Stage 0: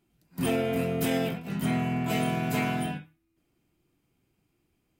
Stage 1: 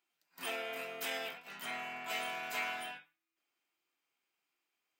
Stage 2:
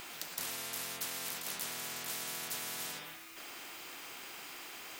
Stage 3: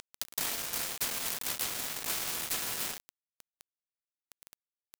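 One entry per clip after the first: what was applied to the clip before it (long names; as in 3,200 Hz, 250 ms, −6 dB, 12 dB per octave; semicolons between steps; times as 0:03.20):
high-pass filter 1,000 Hz 12 dB per octave; parametric band 11,000 Hz −9.5 dB 0.65 octaves; level −3 dB
downward compressor 2.5 to 1, threshold −52 dBFS, peak gain reduction 12.5 dB; every bin compressed towards the loudest bin 10 to 1; level +16 dB
bit-depth reduction 6 bits, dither none; level +5.5 dB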